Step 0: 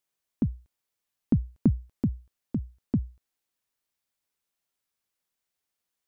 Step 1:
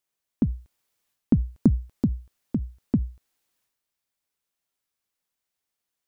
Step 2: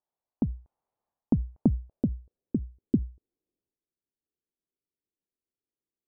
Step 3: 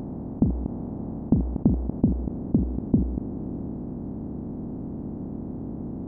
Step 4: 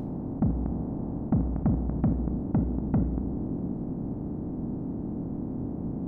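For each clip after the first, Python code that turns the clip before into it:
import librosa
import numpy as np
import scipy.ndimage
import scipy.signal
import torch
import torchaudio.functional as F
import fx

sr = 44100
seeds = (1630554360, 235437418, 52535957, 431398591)

y1 = fx.transient(x, sr, attack_db=4, sustain_db=8)
y2 = fx.filter_sweep_lowpass(y1, sr, from_hz=840.0, to_hz=370.0, start_s=1.51, end_s=2.65, q=2.5)
y2 = y2 * librosa.db_to_amplitude(-5.0)
y3 = fx.bin_compress(y2, sr, power=0.2)
y4 = 10.0 ** (-18.0 / 20.0) * np.tanh(y3 / 10.0 ** (-18.0 / 20.0))
y4 = fx.room_shoebox(y4, sr, seeds[0], volume_m3=400.0, walls='mixed', distance_m=0.45)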